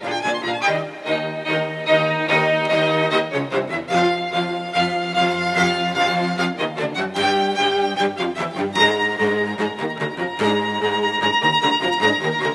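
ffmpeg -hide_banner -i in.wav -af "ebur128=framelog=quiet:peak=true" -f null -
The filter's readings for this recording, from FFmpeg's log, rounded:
Integrated loudness:
  I:         -19.7 LUFS
  Threshold: -29.7 LUFS
Loudness range:
  LRA:         1.2 LU
  Threshold: -39.7 LUFS
  LRA low:   -20.3 LUFS
  LRA high:  -19.2 LUFS
True peak:
  Peak:       -1.9 dBFS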